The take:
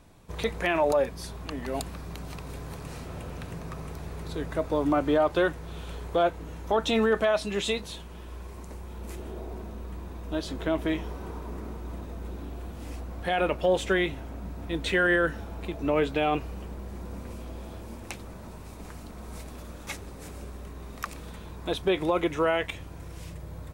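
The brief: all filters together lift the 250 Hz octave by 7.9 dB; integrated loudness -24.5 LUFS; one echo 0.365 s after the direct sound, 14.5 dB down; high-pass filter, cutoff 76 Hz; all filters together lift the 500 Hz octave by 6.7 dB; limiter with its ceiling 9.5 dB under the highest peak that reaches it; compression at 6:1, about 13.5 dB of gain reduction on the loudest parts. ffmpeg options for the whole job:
-af "highpass=76,equalizer=f=250:t=o:g=8.5,equalizer=f=500:t=o:g=6,acompressor=threshold=-28dB:ratio=6,alimiter=level_in=0.5dB:limit=-24dB:level=0:latency=1,volume=-0.5dB,aecho=1:1:365:0.188,volume=11.5dB"

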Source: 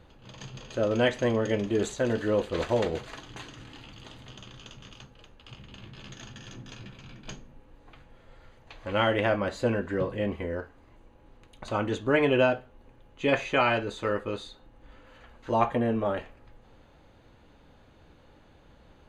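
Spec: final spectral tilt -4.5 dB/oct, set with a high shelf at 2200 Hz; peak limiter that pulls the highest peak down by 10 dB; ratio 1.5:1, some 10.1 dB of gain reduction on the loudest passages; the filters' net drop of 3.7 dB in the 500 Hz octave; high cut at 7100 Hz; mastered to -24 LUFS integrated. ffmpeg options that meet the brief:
-af "lowpass=7.1k,equalizer=f=500:t=o:g=-5,highshelf=f=2.2k:g=7.5,acompressor=threshold=-48dB:ratio=1.5,volume=17dB,alimiter=limit=-11.5dB:level=0:latency=1"

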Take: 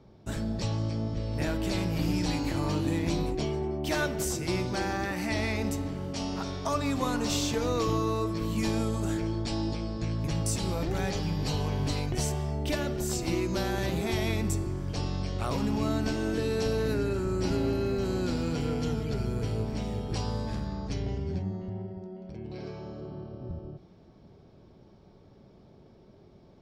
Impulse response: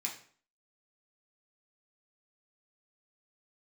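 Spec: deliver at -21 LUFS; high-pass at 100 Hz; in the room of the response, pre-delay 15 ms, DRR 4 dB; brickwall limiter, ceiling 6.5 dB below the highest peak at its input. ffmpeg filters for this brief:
-filter_complex "[0:a]highpass=100,alimiter=limit=-23dB:level=0:latency=1,asplit=2[a][b];[1:a]atrim=start_sample=2205,adelay=15[c];[b][c]afir=irnorm=-1:irlink=0,volume=-5dB[d];[a][d]amix=inputs=2:normalize=0,volume=10.5dB"

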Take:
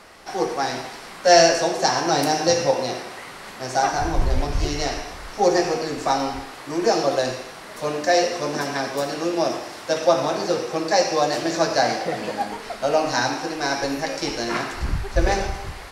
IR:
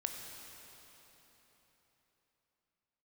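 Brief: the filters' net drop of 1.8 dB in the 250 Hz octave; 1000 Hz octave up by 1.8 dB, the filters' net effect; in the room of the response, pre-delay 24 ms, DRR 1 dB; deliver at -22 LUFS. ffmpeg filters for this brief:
-filter_complex "[0:a]equalizer=f=250:t=o:g=-3,equalizer=f=1k:t=o:g=3,asplit=2[a][b];[1:a]atrim=start_sample=2205,adelay=24[c];[b][c]afir=irnorm=-1:irlink=0,volume=-1.5dB[d];[a][d]amix=inputs=2:normalize=0,volume=-2.5dB"

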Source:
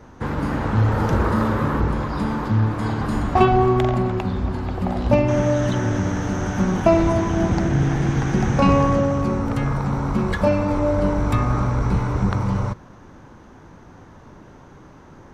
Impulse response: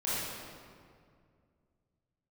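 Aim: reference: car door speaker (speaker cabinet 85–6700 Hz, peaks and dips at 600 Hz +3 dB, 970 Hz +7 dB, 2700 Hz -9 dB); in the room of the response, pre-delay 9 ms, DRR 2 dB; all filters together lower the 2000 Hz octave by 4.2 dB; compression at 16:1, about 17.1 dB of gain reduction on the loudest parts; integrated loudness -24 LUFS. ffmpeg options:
-filter_complex "[0:a]equalizer=f=2k:t=o:g=-5,acompressor=threshold=-28dB:ratio=16,asplit=2[a][b];[1:a]atrim=start_sample=2205,adelay=9[c];[b][c]afir=irnorm=-1:irlink=0,volume=-9.5dB[d];[a][d]amix=inputs=2:normalize=0,highpass=85,equalizer=f=600:t=q:w=4:g=3,equalizer=f=970:t=q:w=4:g=7,equalizer=f=2.7k:t=q:w=4:g=-9,lowpass=f=6.7k:w=0.5412,lowpass=f=6.7k:w=1.3066,volume=6dB"

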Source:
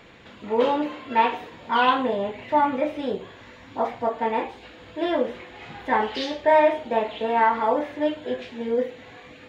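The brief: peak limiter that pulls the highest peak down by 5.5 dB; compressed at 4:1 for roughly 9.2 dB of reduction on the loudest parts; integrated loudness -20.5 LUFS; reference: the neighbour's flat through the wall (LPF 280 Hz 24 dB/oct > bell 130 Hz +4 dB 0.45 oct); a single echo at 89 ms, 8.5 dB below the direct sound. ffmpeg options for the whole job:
-af "acompressor=threshold=-25dB:ratio=4,alimiter=limit=-21dB:level=0:latency=1,lowpass=f=280:w=0.5412,lowpass=f=280:w=1.3066,equalizer=f=130:t=o:w=0.45:g=4,aecho=1:1:89:0.376,volume=21dB"

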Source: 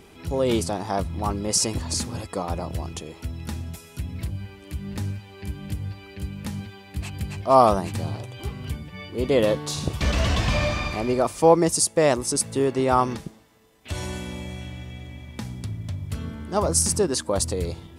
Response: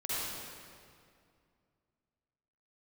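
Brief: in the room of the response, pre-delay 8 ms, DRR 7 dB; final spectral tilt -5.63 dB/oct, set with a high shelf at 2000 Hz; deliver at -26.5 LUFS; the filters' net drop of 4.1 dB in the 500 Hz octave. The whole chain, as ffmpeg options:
-filter_complex "[0:a]equalizer=f=500:t=o:g=-4.5,highshelf=f=2k:g=-8,asplit=2[a][b];[1:a]atrim=start_sample=2205,adelay=8[c];[b][c]afir=irnorm=-1:irlink=0,volume=-13dB[d];[a][d]amix=inputs=2:normalize=0,volume=1dB"

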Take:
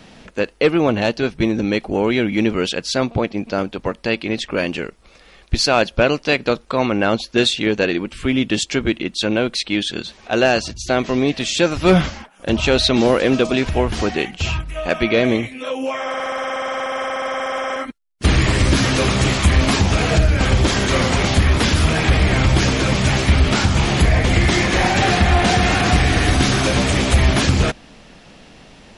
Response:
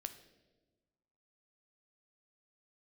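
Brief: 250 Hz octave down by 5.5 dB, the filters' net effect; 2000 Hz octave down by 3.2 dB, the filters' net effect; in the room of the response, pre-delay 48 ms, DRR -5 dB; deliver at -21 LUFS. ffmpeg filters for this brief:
-filter_complex "[0:a]equalizer=f=250:t=o:g=-7.5,equalizer=f=2k:t=o:g=-4,asplit=2[a][b];[1:a]atrim=start_sample=2205,adelay=48[c];[b][c]afir=irnorm=-1:irlink=0,volume=8dB[d];[a][d]amix=inputs=2:normalize=0,volume=-7dB"

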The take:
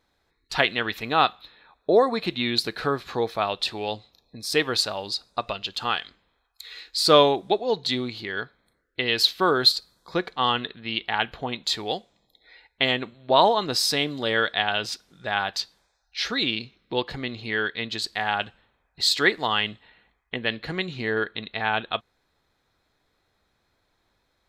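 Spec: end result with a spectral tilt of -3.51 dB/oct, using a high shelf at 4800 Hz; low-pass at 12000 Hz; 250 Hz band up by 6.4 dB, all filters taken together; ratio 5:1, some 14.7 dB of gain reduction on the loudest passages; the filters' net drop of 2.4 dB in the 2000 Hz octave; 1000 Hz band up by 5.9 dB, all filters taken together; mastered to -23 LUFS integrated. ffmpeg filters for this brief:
-af "lowpass=12k,equalizer=f=250:t=o:g=7.5,equalizer=f=1k:t=o:g=8.5,equalizer=f=2k:t=o:g=-7.5,highshelf=f=4.8k:g=5.5,acompressor=threshold=-24dB:ratio=5,volume=6dB"

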